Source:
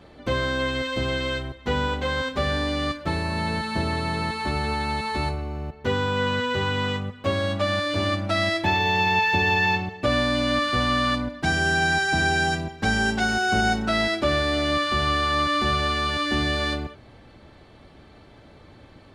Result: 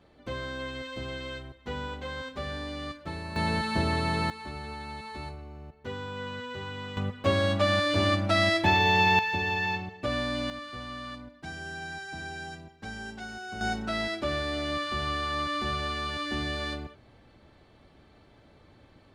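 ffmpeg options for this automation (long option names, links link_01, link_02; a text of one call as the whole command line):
ffmpeg -i in.wav -af "asetnsamples=nb_out_samples=441:pad=0,asendcmd='3.36 volume volume -1.5dB;4.3 volume volume -13dB;6.97 volume volume -0.5dB;9.19 volume volume -8dB;10.5 volume volume -17dB;13.61 volume volume -8dB',volume=-11dB" out.wav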